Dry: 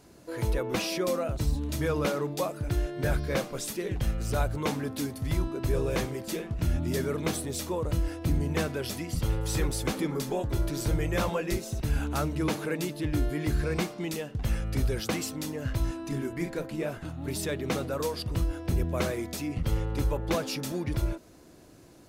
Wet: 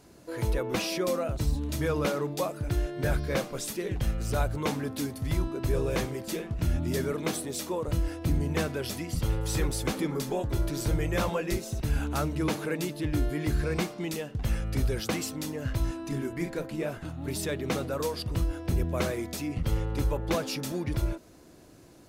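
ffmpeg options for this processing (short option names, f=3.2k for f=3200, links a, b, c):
-filter_complex "[0:a]asettb=1/sr,asplit=3[a][b][c];[a]atrim=end=7.124[d];[b]atrim=start=7.12:end=7.88,asetpts=PTS-STARTPTS,afade=t=in:d=0.004:c=qsin,afade=t=out:st=0.756:d=0.004:c=qsin,highpass=160[e];[c]atrim=start=7.876[f];[d][e]acrossfade=d=0.004:c1=hsin:c2=qsin[g];[g][f]acrossfade=d=0.004:c1=qsin:c2=hsin"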